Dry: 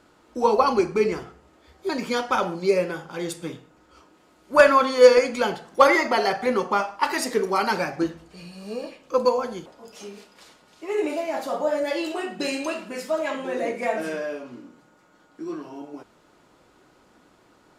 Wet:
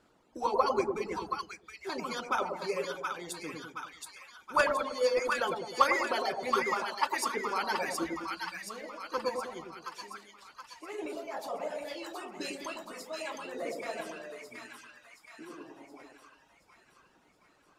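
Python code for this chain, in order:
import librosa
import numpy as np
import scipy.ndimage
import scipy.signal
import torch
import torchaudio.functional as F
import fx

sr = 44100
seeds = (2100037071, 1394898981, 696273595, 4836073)

y = fx.hpss(x, sr, part='harmonic', gain_db=-11)
y = fx.dereverb_blind(y, sr, rt60_s=1.5)
y = fx.echo_split(y, sr, split_hz=1000.0, low_ms=103, high_ms=723, feedback_pct=52, wet_db=-3.5)
y = F.gain(torch.from_numpy(y), -5.0).numpy()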